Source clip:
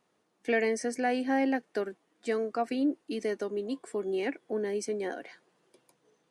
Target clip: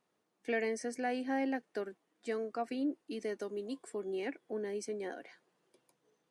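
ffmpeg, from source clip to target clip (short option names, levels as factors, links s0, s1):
-filter_complex "[0:a]asettb=1/sr,asplit=3[s0][s1][s2];[s0]atrim=end=3.394[s3];[s1]atrim=start=3.39:end=3.9,asetpts=PTS-STARTPTS,afade=t=in:d=0.004:c=qsin,afade=t=out:st=0.506:d=0.004:c=qsin,highshelf=f=5100:g=6.5[s4];[s2]atrim=start=3.896[s5];[s3][s4]acrossfade=d=0.004:c1=hsin:c2=qsin[s6];[s6][s5]acrossfade=d=0.004:c1=qsin:c2=hsin,volume=0.473"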